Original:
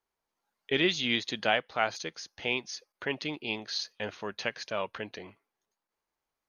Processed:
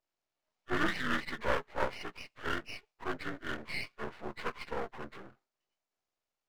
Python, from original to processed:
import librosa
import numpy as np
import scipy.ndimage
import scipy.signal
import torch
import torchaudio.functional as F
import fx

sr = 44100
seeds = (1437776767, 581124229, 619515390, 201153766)

y = fx.partial_stretch(x, sr, pct=76)
y = np.maximum(y, 0.0)
y = F.gain(torch.from_numpy(y), 1.0).numpy()